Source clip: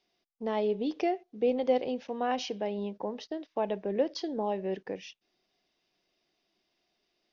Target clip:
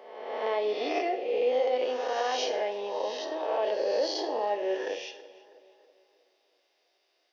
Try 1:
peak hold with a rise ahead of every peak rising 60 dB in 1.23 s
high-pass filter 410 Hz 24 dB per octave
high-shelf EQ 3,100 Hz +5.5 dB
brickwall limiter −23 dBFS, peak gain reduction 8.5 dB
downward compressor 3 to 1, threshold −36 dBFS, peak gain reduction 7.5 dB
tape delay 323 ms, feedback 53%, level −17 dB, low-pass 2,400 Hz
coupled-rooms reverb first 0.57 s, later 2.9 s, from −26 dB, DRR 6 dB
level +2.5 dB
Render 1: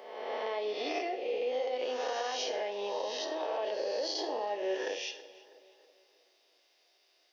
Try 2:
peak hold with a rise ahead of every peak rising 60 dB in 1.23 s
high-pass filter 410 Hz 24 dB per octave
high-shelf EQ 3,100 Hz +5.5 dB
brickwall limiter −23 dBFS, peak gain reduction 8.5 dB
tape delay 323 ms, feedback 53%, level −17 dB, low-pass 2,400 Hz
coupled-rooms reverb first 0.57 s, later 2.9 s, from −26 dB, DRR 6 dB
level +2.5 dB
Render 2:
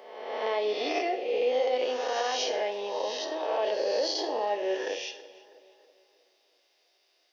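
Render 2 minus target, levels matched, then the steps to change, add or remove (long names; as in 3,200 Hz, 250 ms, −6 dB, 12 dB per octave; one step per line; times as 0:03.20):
8,000 Hz band +4.5 dB
change: high-shelf EQ 3,100 Hz −2 dB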